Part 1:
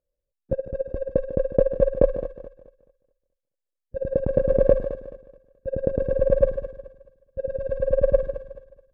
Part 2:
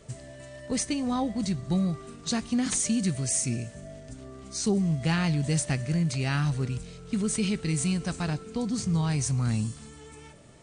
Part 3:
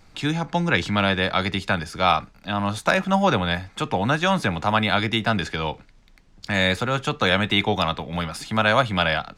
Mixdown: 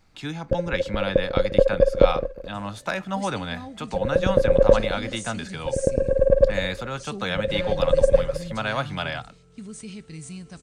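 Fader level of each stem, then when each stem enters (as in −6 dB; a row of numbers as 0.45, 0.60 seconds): +2.0, −11.0, −8.0 decibels; 0.00, 2.45, 0.00 seconds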